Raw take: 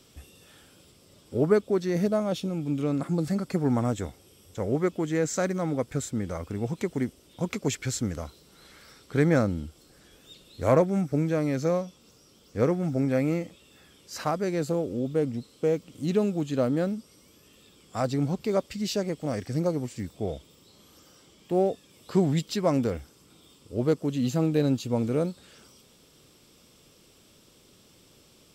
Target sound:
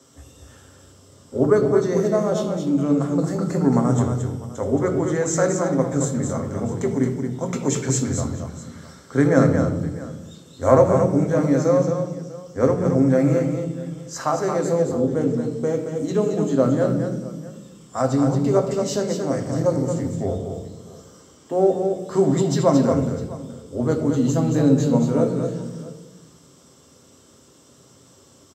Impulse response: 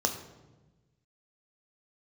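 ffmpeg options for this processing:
-filter_complex "[0:a]aecho=1:1:224|651:0.501|0.112[link_01];[1:a]atrim=start_sample=2205,asetrate=48510,aresample=44100[link_02];[link_01][link_02]afir=irnorm=-1:irlink=0,volume=-3dB"

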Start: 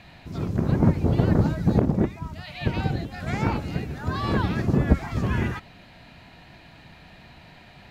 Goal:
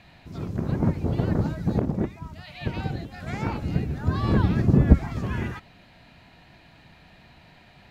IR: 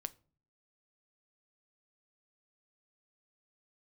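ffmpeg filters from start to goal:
-filter_complex "[0:a]asettb=1/sr,asplit=3[link_01][link_02][link_03];[link_01]atrim=end=3.624[link_04];[link_02]atrim=start=3.62:end=5.13,asetpts=PTS-STARTPTS,afade=type=in:duration=0.004:curve=qsin,afade=type=out:start_time=1.506:duration=0.004:curve=qsin,lowshelf=frequency=410:gain=9[link_05];[link_03]atrim=start=5.126[link_06];[link_04][link_05]acrossfade=duration=0.004:curve1=hsin:curve2=qsin[link_07];[link_07][link_06]acrossfade=duration=0.004:curve1=qsin:curve2=hsin,volume=-4dB"

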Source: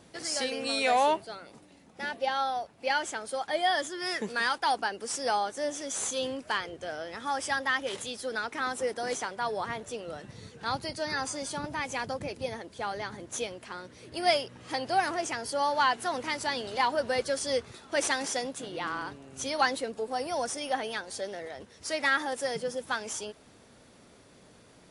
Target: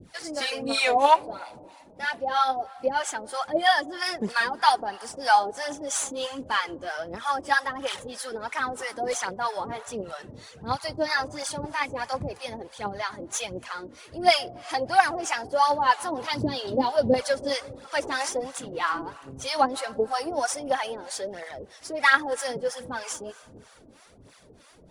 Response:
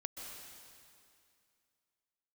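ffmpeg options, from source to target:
-filter_complex "[0:a]aphaser=in_gain=1:out_gain=1:delay=3.8:decay=0.55:speed=1.4:type=triangular,asettb=1/sr,asplit=3[link_01][link_02][link_03];[link_01]atrim=end=16.214[link_04];[link_02]atrim=start=16.21:end=17.14,asetpts=PTS-STARTPTS,afade=type=in:duration=0.004:curve=qsin,afade=type=out:start_time=0.926:duration=0.004:curve=qsin,equalizer=frequency=125:width_type=o:width=1:gain=10,equalizer=frequency=250:width_type=o:width=1:gain=7,equalizer=frequency=500:width_type=o:width=1:gain=5,equalizer=frequency=1000:width_type=o:width=1:gain=-7,equalizer=frequency=2000:width_type=o:width=1:gain=-7,equalizer=frequency=4000:width_type=o:width=1:gain=4,equalizer=frequency=8000:width_type=o:width=1:gain=-8[link_05];[link_03]atrim=start=17.136[link_06];[link_04][link_05]acrossfade=duration=0.004:curve1=hsin:curve2=qsin[link_07];[link_07][link_06]acrossfade=duration=0.004:curve1=qsin:curve2=hsin,asplit=2[link_08][link_09];[1:a]atrim=start_sample=2205,lowshelf=frequency=490:gain=11[link_10];[link_09][link_10]afir=irnorm=-1:irlink=0,volume=-18dB[link_11];[link_08][link_11]amix=inputs=2:normalize=0,adynamicequalizer=threshold=0.01:dfrequency=1000:dqfactor=1.2:tfrequency=1000:tqfactor=1.2:attack=5:release=100:ratio=0.375:range=2.5:mode=boostabove:tftype=bell,acrossover=split=670[link_12][link_13];[link_12]aeval=exprs='val(0)*(1-1/2+1/2*cos(2*PI*3.1*n/s))':channel_layout=same[link_14];[link_13]aeval=exprs='val(0)*(1-1/2-1/2*cos(2*PI*3.1*n/s))':channel_layout=same[link_15];[link_14][link_15]amix=inputs=2:normalize=0,volume=4.5dB"

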